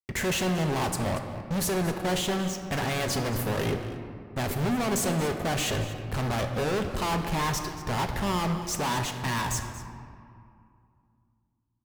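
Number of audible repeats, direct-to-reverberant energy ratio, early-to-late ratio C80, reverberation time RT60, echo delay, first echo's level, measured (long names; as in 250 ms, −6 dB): 1, 4.5 dB, 7.5 dB, 2.4 s, 232 ms, −16.0 dB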